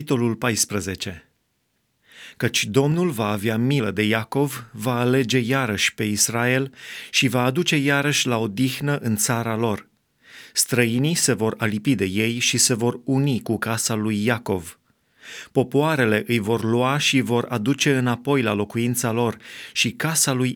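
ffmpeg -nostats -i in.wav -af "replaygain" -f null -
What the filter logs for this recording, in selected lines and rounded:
track_gain = +2.2 dB
track_peak = 0.499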